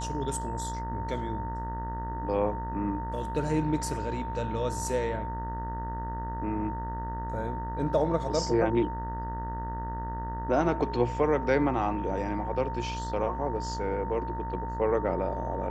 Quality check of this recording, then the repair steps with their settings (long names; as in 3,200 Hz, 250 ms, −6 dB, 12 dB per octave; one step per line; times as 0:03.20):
mains buzz 60 Hz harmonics 32 −36 dBFS
whistle 910 Hz −35 dBFS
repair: hum removal 60 Hz, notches 32
notch filter 910 Hz, Q 30